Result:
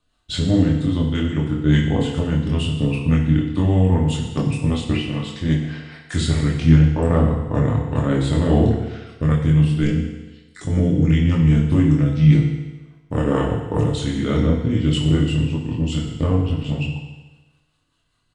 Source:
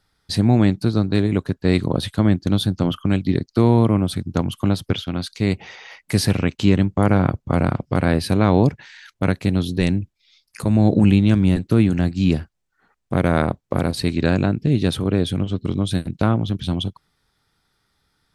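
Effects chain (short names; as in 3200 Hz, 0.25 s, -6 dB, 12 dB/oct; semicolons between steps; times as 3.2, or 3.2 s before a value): pitch shift -3.5 st; rotary speaker horn 5 Hz; chorus voices 6, 0.17 Hz, delay 24 ms, depth 4.6 ms; FDN reverb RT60 1.2 s, low-frequency decay 0.85×, high-frequency decay 1×, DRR 0.5 dB; gain +2 dB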